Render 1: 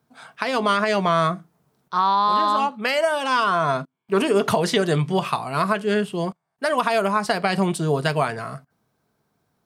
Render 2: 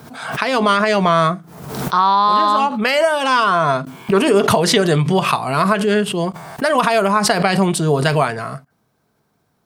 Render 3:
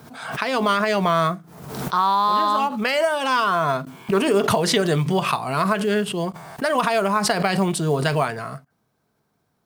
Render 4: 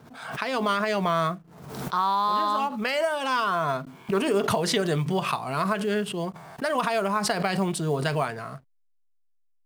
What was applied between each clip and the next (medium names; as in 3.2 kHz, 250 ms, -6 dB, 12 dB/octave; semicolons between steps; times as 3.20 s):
swell ahead of each attack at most 57 dB/s; trim +5 dB
short-mantissa float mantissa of 4-bit; trim -5 dB
hysteresis with a dead band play -45.5 dBFS; trim -5 dB